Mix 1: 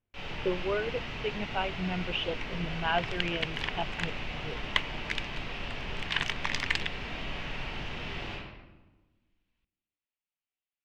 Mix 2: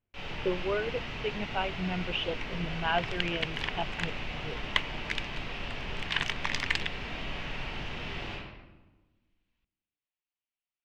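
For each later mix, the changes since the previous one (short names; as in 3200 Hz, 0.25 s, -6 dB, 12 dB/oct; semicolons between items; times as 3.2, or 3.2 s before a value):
none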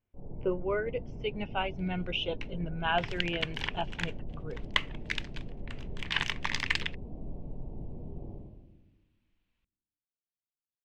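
first sound: add Gaussian blur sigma 16 samples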